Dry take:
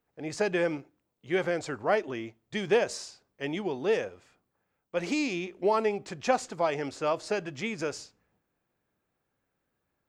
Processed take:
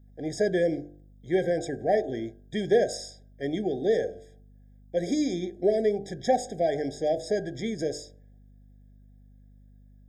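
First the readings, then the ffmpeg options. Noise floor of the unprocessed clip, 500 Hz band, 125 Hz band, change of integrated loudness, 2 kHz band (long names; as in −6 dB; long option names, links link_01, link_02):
−81 dBFS, +3.5 dB, +4.0 dB, +2.5 dB, −5.0 dB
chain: -af "equalizer=frequency=2300:width_type=o:width=0.72:gain=-12,bandreject=frequency=49.28:width_type=h:width=4,bandreject=frequency=98.56:width_type=h:width=4,bandreject=frequency=147.84:width_type=h:width=4,bandreject=frequency=197.12:width_type=h:width=4,bandreject=frequency=246.4:width_type=h:width=4,bandreject=frequency=295.68:width_type=h:width=4,bandreject=frequency=344.96:width_type=h:width=4,bandreject=frequency=394.24:width_type=h:width=4,bandreject=frequency=443.52:width_type=h:width=4,bandreject=frequency=492.8:width_type=h:width=4,bandreject=frequency=542.08:width_type=h:width=4,bandreject=frequency=591.36:width_type=h:width=4,bandreject=frequency=640.64:width_type=h:width=4,bandreject=frequency=689.92:width_type=h:width=4,bandreject=frequency=739.2:width_type=h:width=4,bandreject=frequency=788.48:width_type=h:width=4,bandreject=frequency=837.76:width_type=h:width=4,bandreject=frequency=887.04:width_type=h:width=4,bandreject=frequency=936.32:width_type=h:width=4,bandreject=frequency=985.6:width_type=h:width=4,bandreject=frequency=1034.88:width_type=h:width=4,bandreject=frequency=1084.16:width_type=h:width=4,bandreject=frequency=1133.44:width_type=h:width=4,bandreject=frequency=1182.72:width_type=h:width=4,bandreject=frequency=1232:width_type=h:width=4,bandreject=frequency=1281.28:width_type=h:width=4,bandreject=frequency=1330.56:width_type=h:width=4,bandreject=frequency=1379.84:width_type=h:width=4,bandreject=frequency=1429.12:width_type=h:width=4,bandreject=frequency=1478.4:width_type=h:width=4,bandreject=frequency=1527.68:width_type=h:width=4,bandreject=frequency=1576.96:width_type=h:width=4,bandreject=frequency=1626.24:width_type=h:width=4,aeval=exprs='val(0)+0.00141*(sin(2*PI*50*n/s)+sin(2*PI*2*50*n/s)/2+sin(2*PI*3*50*n/s)/3+sin(2*PI*4*50*n/s)/4+sin(2*PI*5*50*n/s)/5)':channel_layout=same,aeval=exprs='0.2*(cos(1*acos(clip(val(0)/0.2,-1,1)))-cos(1*PI/2))+0.00562*(cos(5*acos(clip(val(0)/0.2,-1,1)))-cos(5*PI/2))':channel_layout=same,afftfilt=real='re*eq(mod(floor(b*sr/1024/790),2),0)':imag='im*eq(mod(floor(b*sr/1024/790),2),0)':win_size=1024:overlap=0.75,volume=3.5dB"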